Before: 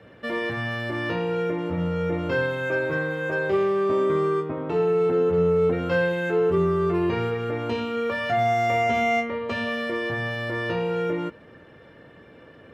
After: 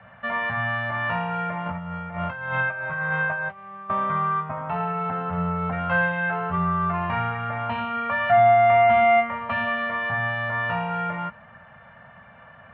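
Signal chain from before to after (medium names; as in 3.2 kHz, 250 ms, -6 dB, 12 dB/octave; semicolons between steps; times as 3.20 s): peaking EQ 5.1 kHz -10 dB 1.6 oct; 1.66–3.90 s: compressor with a negative ratio -29 dBFS, ratio -0.5; FFT filter 220 Hz 0 dB, 310 Hz -25 dB, 460 Hz -16 dB, 660 Hz +7 dB, 1.3 kHz +9 dB, 1.9 kHz +6 dB, 3.1 kHz +3 dB, 4.5 kHz -6 dB, 8.6 kHz -28 dB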